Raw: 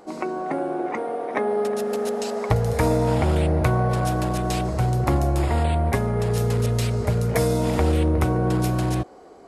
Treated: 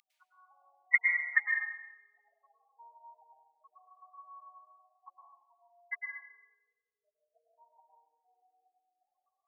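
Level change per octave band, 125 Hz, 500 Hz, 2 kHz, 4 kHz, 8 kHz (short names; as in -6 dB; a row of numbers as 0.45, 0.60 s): under -40 dB, under -40 dB, +1.5 dB, under -40 dB, under -40 dB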